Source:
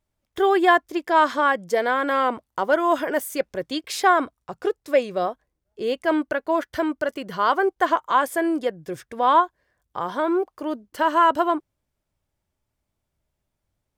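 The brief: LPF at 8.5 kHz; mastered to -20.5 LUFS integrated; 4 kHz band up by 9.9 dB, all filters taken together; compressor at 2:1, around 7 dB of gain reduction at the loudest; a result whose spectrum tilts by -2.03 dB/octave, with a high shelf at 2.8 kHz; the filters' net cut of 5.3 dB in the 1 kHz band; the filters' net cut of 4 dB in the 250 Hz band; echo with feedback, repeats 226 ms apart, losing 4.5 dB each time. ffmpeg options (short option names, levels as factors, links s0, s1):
-af "lowpass=8500,equalizer=f=250:t=o:g=-5.5,equalizer=f=1000:t=o:g=-7.5,highshelf=f=2800:g=6.5,equalizer=f=4000:t=o:g=8.5,acompressor=threshold=0.0447:ratio=2,aecho=1:1:226|452|678|904|1130|1356|1582|1808|2034:0.596|0.357|0.214|0.129|0.0772|0.0463|0.0278|0.0167|0.01,volume=2.24"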